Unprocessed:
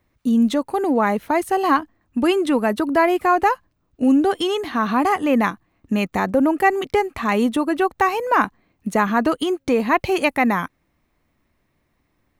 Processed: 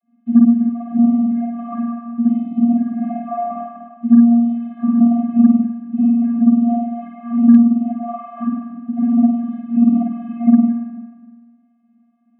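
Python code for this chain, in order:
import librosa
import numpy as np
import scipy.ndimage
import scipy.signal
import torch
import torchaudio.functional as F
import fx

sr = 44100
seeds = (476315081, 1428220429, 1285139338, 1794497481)

p1 = fx.cvsd(x, sr, bps=16000)
p2 = scipy.signal.sosfilt(scipy.signal.butter(4, 170.0, 'highpass', fs=sr, output='sos'), p1)
p3 = fx.tilt_eq(p2, sr, slope=-4.5)
p4 = fx.rev_spring(p3, sr, rt60_s=1.1, pass_ms=(49,), chirp_ms=35, drr_db=-9.0)
p5 = fx.env_flanger(p4, sr, rest_ms=9.5, full_db=0.0)
p6 = p5 + fx.echo_single(p5, sr, ms=181, db=-13.5, dry=0)
p7 = fx.hpss(p6, sr, part='harmonic', gain_db=4)
p8 = fx.vocoder(p7, sr, bands=32, carrier='square', carrier_hz=235.0)
p9 = fx.cheby_harmonics(p8, sr, harmonics=(7,), levels_db=(-35,), full_scale_db=13.5)
p10 = fx.band_squash(p9, sr, depth_pct=40)
y = F.gain(torch.from_numpy(p10), -12.5).numpy()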